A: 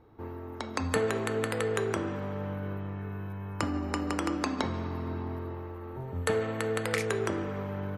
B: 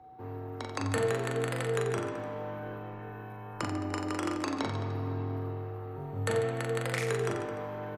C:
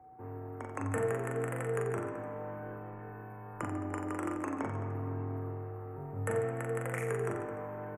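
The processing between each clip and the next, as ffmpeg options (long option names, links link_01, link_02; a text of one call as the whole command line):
ffmpeg -i in.wav -filter_complex "[0:a]aeval=exprs='val(0)+0.00398*sin(2*PI*740*n/s)':channel_layout=same,afreqshift=14,asplit=2[link_01][link_02];[link_02]aecho=0:1:40|88|145.6|214.7|297.7:0.631|0.398|0.251|0.158|0.1[link_03];[link_01][link_03]amix=inputs=2:normalize=0,volume=-4dB" out.wav
ffmpeg -i in.wav -af "asuperstop=centerf=4200:order=4:qfactor=0.73,volume=-3dB" out.wav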